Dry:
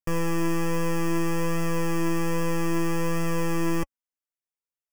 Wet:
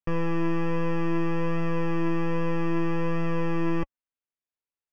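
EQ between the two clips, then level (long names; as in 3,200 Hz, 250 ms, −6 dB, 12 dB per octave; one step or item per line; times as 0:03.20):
high-frequency loss of the air 280 metres
parametric band 2,700 Hz +3 dB 0.2 octaves
0.0 dB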